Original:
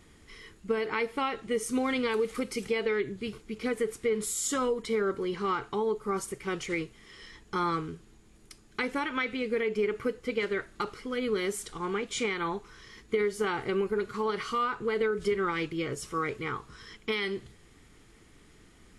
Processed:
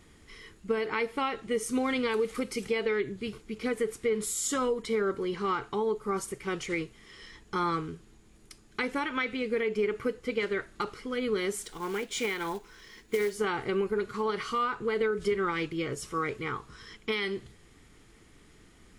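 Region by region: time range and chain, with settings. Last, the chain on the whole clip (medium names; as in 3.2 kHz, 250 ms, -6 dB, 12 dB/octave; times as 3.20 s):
11.63–13.35 s: peaking EQ 85 Hz -8 dB 1.9 oct + band-stop 1.2 kHz, Q 8 + short-mantissa float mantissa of 2-bit
whole clip: none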